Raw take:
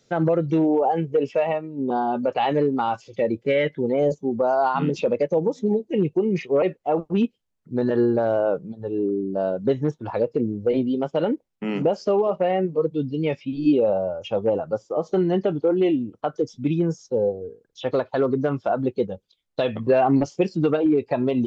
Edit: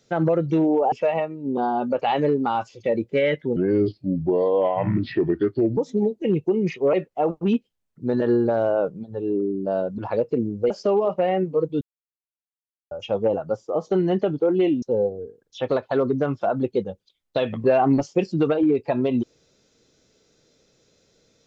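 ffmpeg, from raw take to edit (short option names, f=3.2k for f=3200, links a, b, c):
-filter_complex "[0:a]asplit=9[a][b][c][d][e][f][g][h][i];[a]atrim=end=0.922[j];[b]atrim=start=1.248:end=3.894[k];[c]atrim=start=3.89:end=5.46,asetpts=PTS-STARTPTS,asetrate=31311,aresample=44100[l];[d]atrim=start=5.456:end=9.672[m];[e]atrim=start=10.008:end=10.732[n];[f]atrim=start=11.918:end=13.03,asetpts=PTS-STARTPTS,afade=t=out:st=1.108:d=0.004:c=hsin[o];[g]atrim=start=13.03:end=14.13,asetpts=PTS-STARTPTS,volume=0[p];[h]atrim=start=14.13:end=16.042,asetpts=PTS-STARTPTS,afade=t=in:d=0.004:c=hsin[q];[i]atrim=start=17.048[r];[j][k]acrossfade=d=0.004:c1=hsin:c2=hsin[s];[s][l]acrossfade=d=0.004:c1=hsin:c2=hsin[t];[t][m]acrossfade=d=0.004:c1=hsin:c2=hsin[u];[u][n]acrossfade=d=0.004:c1=hsin:c2=hsin[v];[o][p][q]concat=n=3:v=0:a=1[w];[v][w]acrossfade=d=0.004:c1=hsin:c2=hsin[x];[x][r]acrossfade=d=0.004:c1=hsin:c2=hsin"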